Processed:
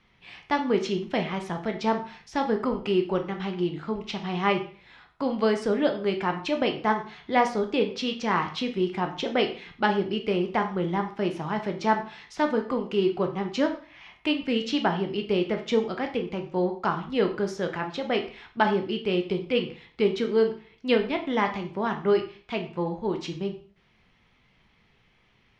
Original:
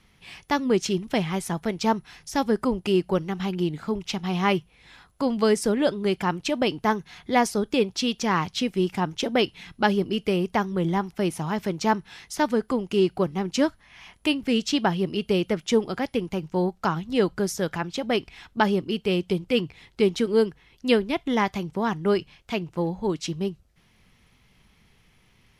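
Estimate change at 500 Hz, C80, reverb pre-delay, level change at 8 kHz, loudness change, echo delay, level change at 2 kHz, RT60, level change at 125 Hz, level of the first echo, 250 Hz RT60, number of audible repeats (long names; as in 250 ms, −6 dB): −1.0 dB, 15.0 dB, 6 ms, below −10 dB, −2.0 dB, no echo audible, −1.0 dB, 0.40 s, −4.5 dB, no echo audible, 0.45 s, no echo audible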